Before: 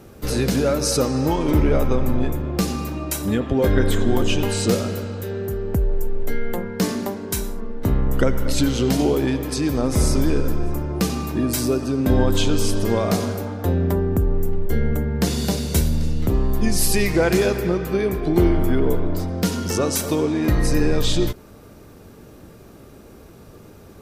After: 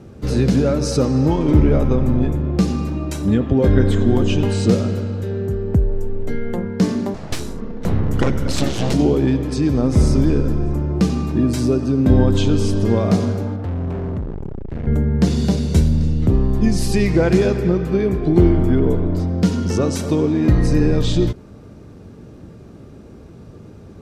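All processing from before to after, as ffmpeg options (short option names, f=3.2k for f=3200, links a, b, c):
-filter_complex "[0:a]asettb=1/sr,asplit=3[a][b][c];[a]atrim=end=7.144[d];[b]atrim=start=7.14:end=8.94,asetpts=PTS-STARTPTS,afade=t=in:d=0.004:c=qsin,afade=t=out:st=1.796:d=0.004:c=qsin,highshelf=f=2.1k:g=8.5,aeval=exprs='abs(val(0))':c=same[e];[c]atrim=start=8.936[f];[d][e]acrossfade=d=0.004:c1=hsin:c2=qsin[g];[g][f]acrossfade=d=0.004:c1=qsin:c2=hsin,asettb=1/sr,asplit=3[h][i][j];[h]atrim=end=13.564[k];[i]atrim=start=13.56:end=14.87,asetpts=PTS-STARTPTS,afade=t=in:d=0.004:c=qsin,afade=t=out:st=1.306:d=0.004:c=qsin,lowpass=f=2.4k:p=1,asoftclip=type=hard:threshold=-27dB[l];[j]atrim=start=14.866[m];[k][l]acrossfade=d=0.004:c1=hsin:c2=qsin[n];[n][m]acrossfade=d=0.004:c1=qsin:c2=hsin,lowpass=7.2k,equalizer=f=130:w=0.35:g=10,volume=-3dB"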